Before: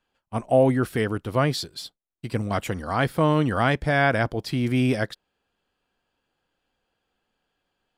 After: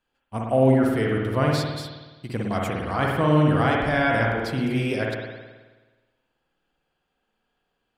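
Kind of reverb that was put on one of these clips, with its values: spring tank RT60 1.3 s, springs 53 ms, chirp 70 ms, DRR -1.5 dB; gain -3 dB

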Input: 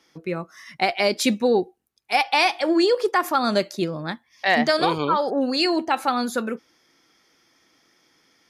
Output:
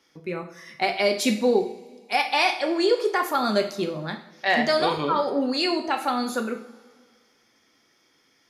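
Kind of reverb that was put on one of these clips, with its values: two-slope reverb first 0.51 s, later 2 s, from -18 dB, DRR 3.5 dB; gain -3.5 dB

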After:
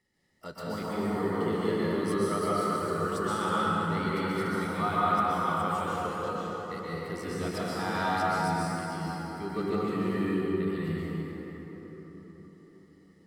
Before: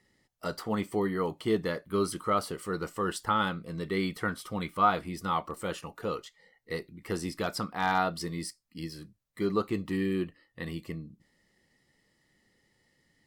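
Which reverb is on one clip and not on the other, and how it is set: plate-style reverb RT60 5 s, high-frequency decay 0.45×, pre-delay 0.11 s, DRR -9 dB; gain -8 dB

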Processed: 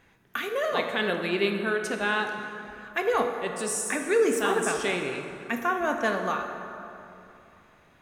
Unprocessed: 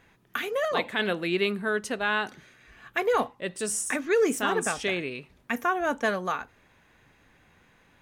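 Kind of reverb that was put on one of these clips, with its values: plate-style reverb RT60 2.9 s, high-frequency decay 0.55×, DRR 4 dB; gain -1 dB

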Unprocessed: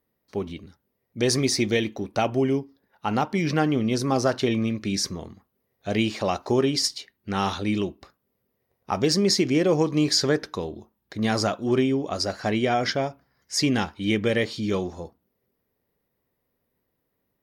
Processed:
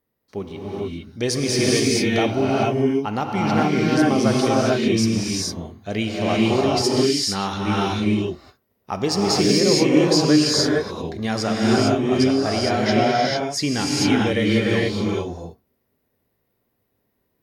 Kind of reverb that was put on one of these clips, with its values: non-linear reverb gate 0.48 s rising, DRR -4.5 dB; gain -1 dB

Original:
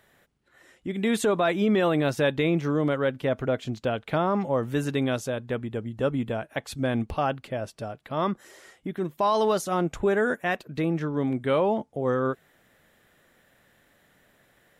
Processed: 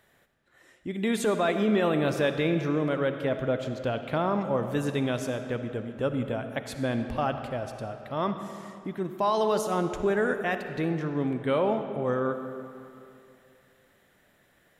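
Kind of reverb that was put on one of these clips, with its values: digital reverb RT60 2.6 s, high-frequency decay 0.7×, pre-delay 20 ms, DRR 7.5 dB; gain -2.5 dB

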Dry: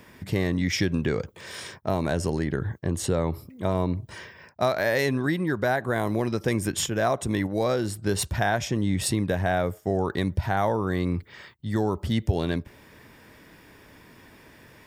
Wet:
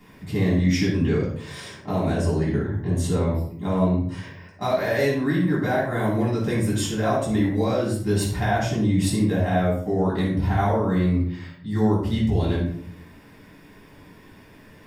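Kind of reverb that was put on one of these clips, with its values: shoebox room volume 810 m³, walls furnished, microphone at 9.7 m; gain -10.5 dB

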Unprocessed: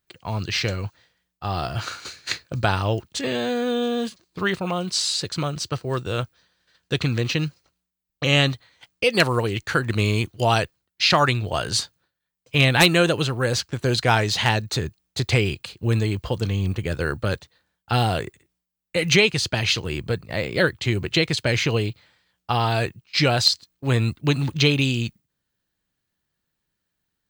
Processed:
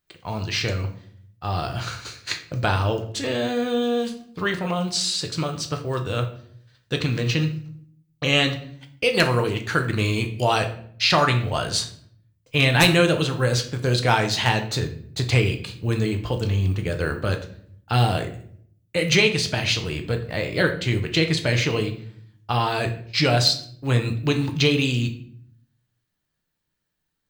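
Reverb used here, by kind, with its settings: shoebox room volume 88 m³, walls mixed, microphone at 0.44 m; gain -1.5 dB

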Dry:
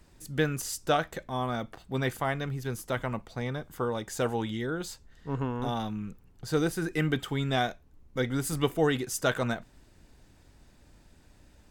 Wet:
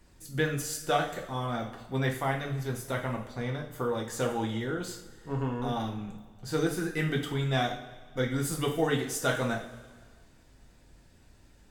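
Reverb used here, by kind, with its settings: two-slope reverb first 0.43 s, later 1.8 s, from -16 dB, DRR -0.5 dB; gain -3.5 dB

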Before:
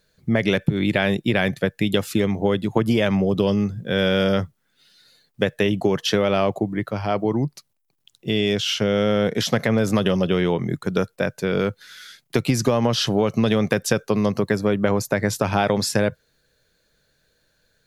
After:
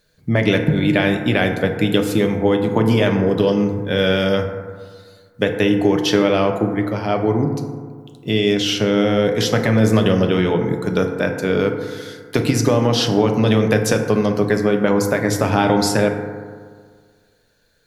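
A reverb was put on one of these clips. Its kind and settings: FDN reverb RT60 1.8 s, low-frequency decay 1×, high-frequency decay 0.3×, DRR 3.5 dB; gain +2 dB

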